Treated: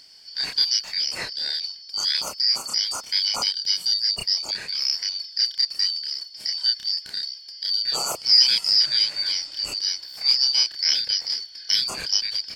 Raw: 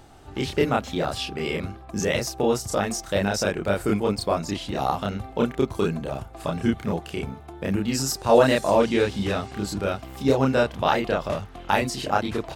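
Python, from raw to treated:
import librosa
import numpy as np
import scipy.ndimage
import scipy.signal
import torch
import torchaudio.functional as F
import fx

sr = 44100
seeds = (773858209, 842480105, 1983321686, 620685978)

y = fx.band_shuffle(x, sr, order='4321')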